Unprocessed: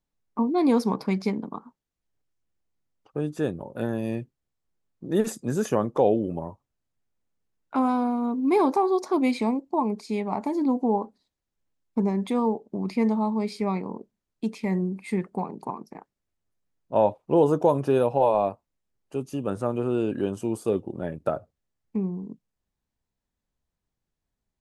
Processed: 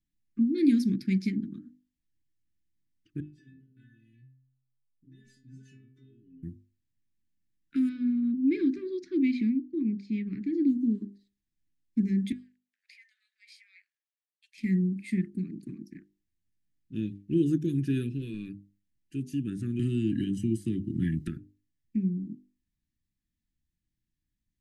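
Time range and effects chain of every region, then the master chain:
0:03.20–0:06.43: low-pass filter 5,600 Hz + downward compressor 3 to 1, threshold −32 dBFS + stiff-string resonator 130 Hz, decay 0.8 s, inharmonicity 0.008
0:07.89–0:10.68: high-frequency loss of the air 180 metres + one half of a high-frequency compander decoder only
0:12.32–0:14.58: high-shelf EQ 2,500 Hz −11 dB + downward compressor, threshold −26 dBFS + Butterworth high-pass 1,500 Hz 48 dB per octave
0:19.79–0:21.28: comb filter 1 ms, depth 62% + multiband upward and downward compressor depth 100%
whole clip: Chebyshev band-stop filter 330–1,700 Hz, order 4; tilt shelving filter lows +3 dB, about 1,300 Hz; mains-hum notches 50/100/150/200/250/300/350/400 Hz; level −1.5 dB

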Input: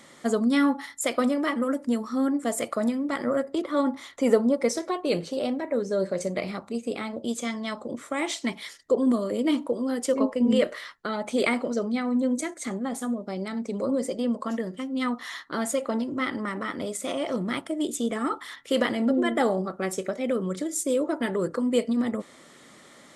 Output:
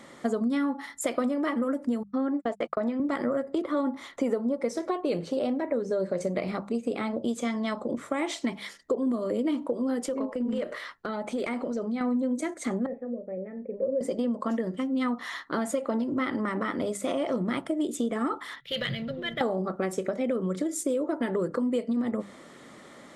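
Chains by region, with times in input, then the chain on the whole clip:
0:02.03–0:03.00: band-pass filter 260–3,800 Hz + noise gate −33 dBFS, range −56 dB
0:10.06–0:12.01: downward compressor 2.5 to 1, threshold −34 dBFS + hard clipping −26 dBFS
0:12.86–0:14.01: formant resonators in series e + spectral tilt −3 dB per octave + double-tracking delay 38 ms −14 dB
0:18.60–0:19.41: drawn EQ curve 100 Hz 0 dB, 150 Hz +14 dB, 250 Hz −26 dB, 580 Hz −15 dB, 880 Hz −26 dB, 1,500 Hz −10 dB, 2,600 Hz −2 dB, 3,800 Hz +4 dB, 8,700 Hz −29 dB, 13,000 Hz +2 dB + leveller curve on the samples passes 1
whole clip: high-shelf EQ 2,300 Hz −9 dB; mains-hum notches 50/100/150/200 Hz; downward compressor 6 to 1, threshold −29 dBFS; level +4.5 dB

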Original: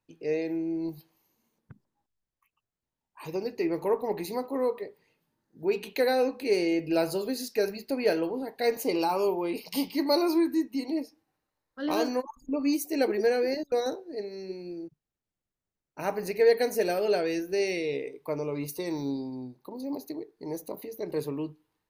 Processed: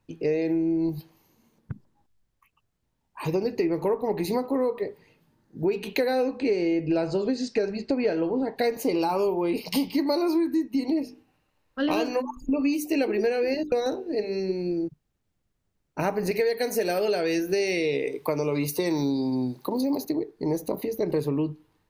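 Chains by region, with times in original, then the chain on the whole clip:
0:06.38–0:08.57: linear-phase brick-wall low-pass 8,700 Hz + high-shelf EQ 4,400 Hz −7 dB
0:11.01–0:14.40: parametric band 2,700 Hz +10.5 dB 0.31 octaves + mains-hum notches 50/100/150/200/250/300/350/400/450 Hz
0:16.31–0:20.05: spectral tilt +1.5 dB per octave + multiband upward and downward compressor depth 40%
whole clip: low-shelf EQ 230 Hz +8 dB; downward compressor, threshold −31 dBFS; high-shelf EQ 7,300 Hz −5.5 dB; level +9 dB

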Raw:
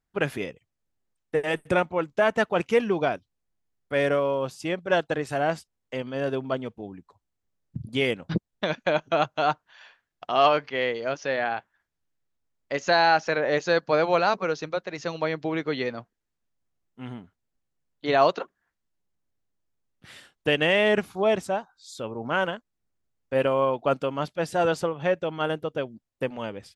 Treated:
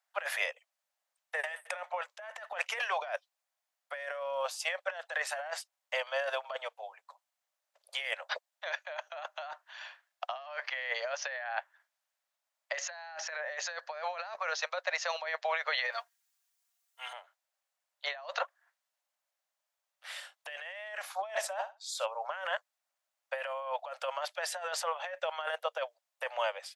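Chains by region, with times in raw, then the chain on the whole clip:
0:15.92–0:17.13: high-pass filter 1,400 Hz 6 dB per octave + high-shelf EQ 4,900 Hz +10.5 dB + comb filter 4.3 ms, depth 73%
0:21.21–0:22.06: noise gate −58 dBFS, range −22 dB + flutter between parallel walls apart 10.9 metres, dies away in 0.25 s
whole clip: Butterworth high-pass 560 Hz 72 dB per octave; dynamic equaliser 1,800 Hz, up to +8 dB, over −46 dBFS, Q 4.4; compressor whose output falls as the input rises −34 dBFS, ratio −1; level −3 dB

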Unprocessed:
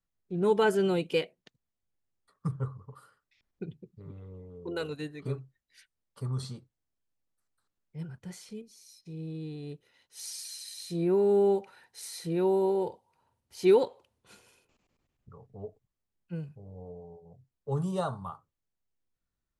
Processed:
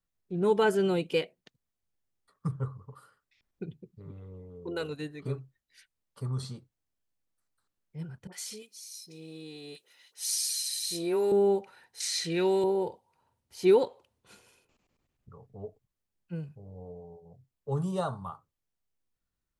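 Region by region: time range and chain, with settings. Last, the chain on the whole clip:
0:08.27–0:11.32: Bessel high-pass filter 380 Hz + high-shelf EQ 2,200 Hz +11.5 dB + all-pass dispersion highs, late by 55 ms, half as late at 1,100 Hz
0:12.00–0:12.64: high-pass filter 150 Hz + flat-topped bell 3,500 Hz +12.5 dB 2.6 octaves
whole clip: no processing

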